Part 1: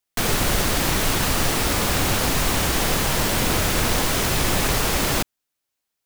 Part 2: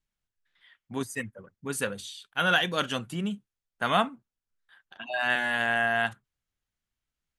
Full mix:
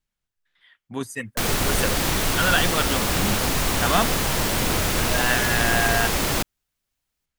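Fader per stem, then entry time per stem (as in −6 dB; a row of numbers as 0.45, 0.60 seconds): −1.5, +2.5 decibels; 1.20, 0.00 seconds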